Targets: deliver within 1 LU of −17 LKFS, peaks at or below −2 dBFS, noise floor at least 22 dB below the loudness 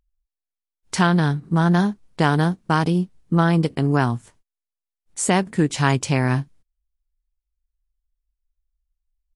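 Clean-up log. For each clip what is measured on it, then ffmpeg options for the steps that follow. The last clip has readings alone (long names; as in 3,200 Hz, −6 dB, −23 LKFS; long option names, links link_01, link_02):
integrated loudness −20.5 LKFS; sample peak −3.5 dBFS; target loudness −17.0 LKFS
→ -af "volume=3.5dB,alimiter=limit=-2dB:level=0:latency=1"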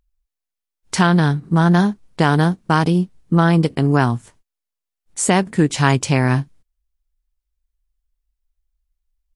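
integrated loudness −17.0 LKFS; sample peak −2.0 dBFS; background noise floor −84 dBFS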